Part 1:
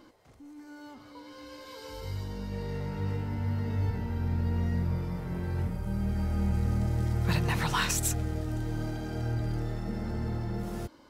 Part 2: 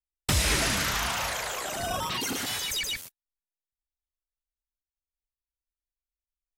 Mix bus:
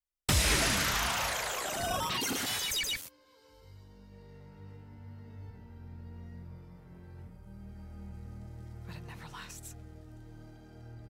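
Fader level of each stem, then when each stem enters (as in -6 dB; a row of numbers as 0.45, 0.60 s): -17.5, -2.0 dB; 1.60, 0.00 s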